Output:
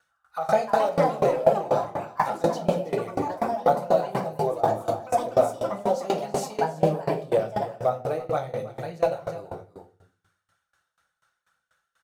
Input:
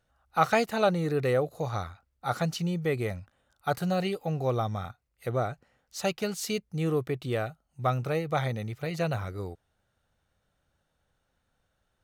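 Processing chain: tone controls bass +7 dB, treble +14 dB; echoes that change speed 0.38 s, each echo +4 st, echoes 3; auto-wah 640–1400 Hz, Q 2.8, down, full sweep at -25 dBFS; phaser 1.9 Hz, delay 3 ms, feedback 48%; on a send: echo 0.324 s -11 dB; on the sum: shoebox room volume 120 m³, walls mixed, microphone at 0.73 m; in parallel at +2 dB: limiter -21.5 dBFS, peak gain reduction 10.5 dB; on the sum: high shelf 4300 Hz +11.5 dB; dB-ramp tremolo decaying 4.1 Hz, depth 21 dB; gain +5 dB

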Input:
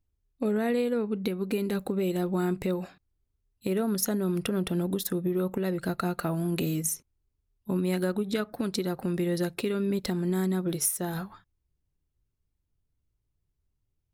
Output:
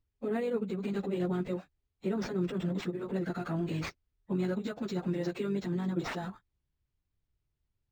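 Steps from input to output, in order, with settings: limiter -21.5 dBFS, peak gain reduction 8 dB; plain phase-vocoder stretch 0.56×; decimation joined by straight lines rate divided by 4×

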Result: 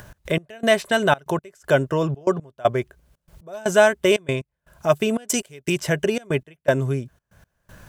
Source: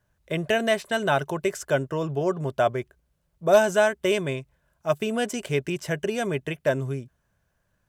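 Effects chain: 5.29–5.76 high shelf 4100 Hz +10 dB; in parallel at -1 dB: upward compressor, threshold -22 dBFS; on the sum: step gate "x.x..xxx" 119 bpm -24 dB

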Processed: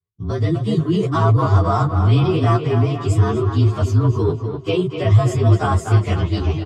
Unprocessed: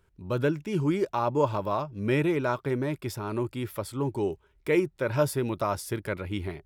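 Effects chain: inharmonic rescaling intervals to 113%; low shelf 210 Hz +8.5 dB; in parallel at +3 dB: negative-ratio compressor -29 dBFS, ratio -1; on the sum: speaker cabinet 100–8700 Hz, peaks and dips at 100 Hz +10 dB, 230 Hz -7 dB, 550 Hz -9 dB, 1100 Hz +4 dB, 1700 Hz -10 dB; on a send: tape echo 0.249 s, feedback 61%, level -6 dB, low-pass 3400 Hz; on the sum: expander -31 dBFS; endless flanger 10.4 ms +2.6 Hz; gain +6.5 dB

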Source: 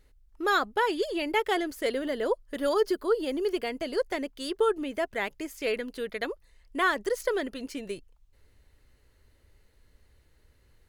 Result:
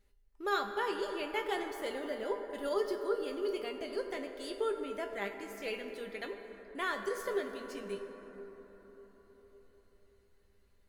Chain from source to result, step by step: resonator 200 Hz, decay 0.21 s, harmonics all, mix 80%; plate-style reverb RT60 4.7 s, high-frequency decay 0.35×, DRR 5.5 dB

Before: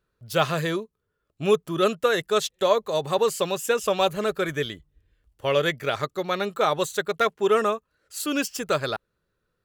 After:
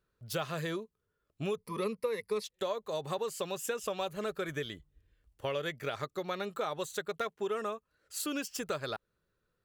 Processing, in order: 1.57–2.44 ripple EQ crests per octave 0.89, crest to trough 18 dB; compressor 4:1, threshold -29 dBFS, peak gain reduction 16 dB; gain -4 dB

